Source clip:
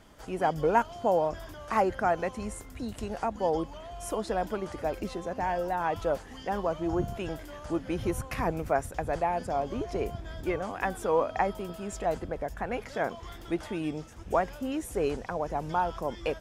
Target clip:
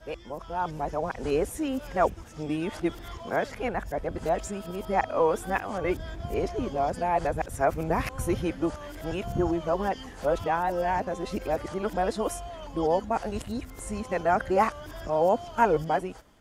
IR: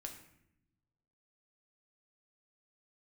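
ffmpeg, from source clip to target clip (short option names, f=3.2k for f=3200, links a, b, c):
-af "areverse,dynaudnorm=f=210:g=7:m=8.5dB,volume=-5.5dB"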